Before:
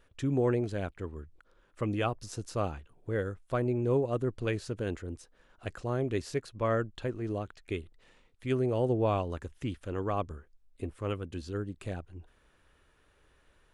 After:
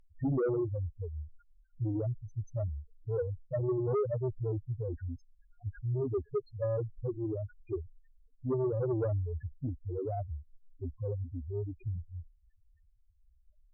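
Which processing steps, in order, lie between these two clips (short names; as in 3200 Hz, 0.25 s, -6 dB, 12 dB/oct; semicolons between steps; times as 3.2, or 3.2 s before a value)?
treble ducked by the level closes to 640 Hz, closed at -25 dBFS; loudest bins only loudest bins 2; sine folder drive 4 dB, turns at -24 dBFS; gain -2 dB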